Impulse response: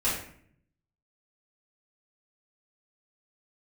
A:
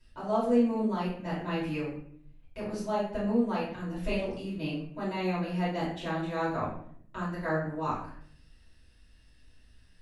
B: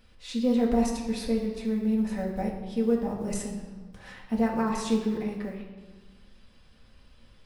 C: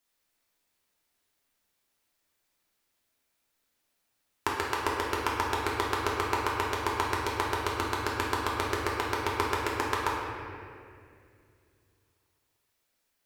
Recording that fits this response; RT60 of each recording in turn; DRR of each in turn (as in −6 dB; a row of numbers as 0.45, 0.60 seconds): A; 0.60, 1.4, 2.3 seconds; −10.5, −2.0, −5.5 decibels